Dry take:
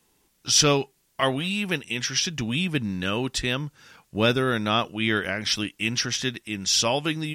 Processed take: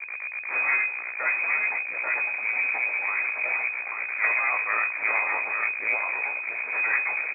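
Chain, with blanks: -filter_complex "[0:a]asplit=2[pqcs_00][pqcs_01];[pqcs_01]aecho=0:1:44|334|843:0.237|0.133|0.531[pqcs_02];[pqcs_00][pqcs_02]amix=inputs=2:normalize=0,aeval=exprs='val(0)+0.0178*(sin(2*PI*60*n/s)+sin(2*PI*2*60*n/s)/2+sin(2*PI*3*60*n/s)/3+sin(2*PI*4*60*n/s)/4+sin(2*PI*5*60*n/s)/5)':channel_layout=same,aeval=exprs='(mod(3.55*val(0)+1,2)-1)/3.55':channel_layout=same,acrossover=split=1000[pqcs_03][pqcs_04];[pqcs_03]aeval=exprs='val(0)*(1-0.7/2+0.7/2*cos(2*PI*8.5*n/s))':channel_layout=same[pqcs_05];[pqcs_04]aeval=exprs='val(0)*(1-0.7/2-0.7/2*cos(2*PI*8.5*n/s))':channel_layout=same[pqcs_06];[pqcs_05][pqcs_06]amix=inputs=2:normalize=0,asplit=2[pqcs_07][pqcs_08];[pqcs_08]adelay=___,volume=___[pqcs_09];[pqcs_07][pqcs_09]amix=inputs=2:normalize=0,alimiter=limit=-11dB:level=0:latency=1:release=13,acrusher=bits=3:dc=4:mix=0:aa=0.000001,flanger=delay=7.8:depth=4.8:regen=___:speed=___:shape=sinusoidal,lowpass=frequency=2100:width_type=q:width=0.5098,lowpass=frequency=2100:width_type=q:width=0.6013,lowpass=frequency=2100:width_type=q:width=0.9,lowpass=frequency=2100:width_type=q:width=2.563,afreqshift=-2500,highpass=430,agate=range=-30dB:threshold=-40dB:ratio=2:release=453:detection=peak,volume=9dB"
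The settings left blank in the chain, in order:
17, -7dB, -83, 0.87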